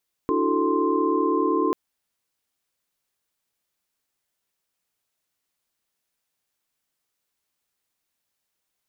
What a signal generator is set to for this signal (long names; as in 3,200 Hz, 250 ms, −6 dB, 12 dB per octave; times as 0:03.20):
held notes D4/E4/F#4/A4/C6 sine, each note −25.5 dBFS 1.44 s